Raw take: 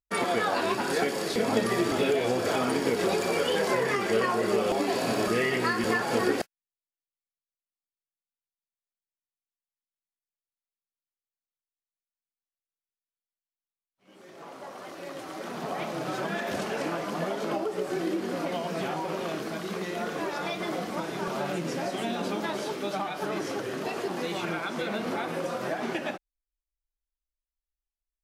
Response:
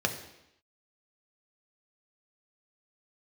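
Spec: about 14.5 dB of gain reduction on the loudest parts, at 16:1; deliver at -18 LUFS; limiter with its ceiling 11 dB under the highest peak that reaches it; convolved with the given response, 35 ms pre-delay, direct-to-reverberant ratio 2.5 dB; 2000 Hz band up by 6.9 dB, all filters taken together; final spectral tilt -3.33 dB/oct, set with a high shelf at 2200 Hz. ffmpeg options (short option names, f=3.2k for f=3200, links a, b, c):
-filter_complex "[0:a]equalizer=f=2k:t=o:g=4,highshelf=f=2.2k:g=8.5,acompressor=threshold=-33dB:ratio=16,alimiter=level_in=8dB:limit=-24dB:level=0:latency=1,volume=-8dB,asplit=2[a][b];[1:a]atrim=start_sample=2205,adelay=35[c];[b][c]afir=irnorm=-1:irlink=0,volume=-11.5dB[d];[a][d]amix=inputs=2:normalize=0,volume=20.5dB"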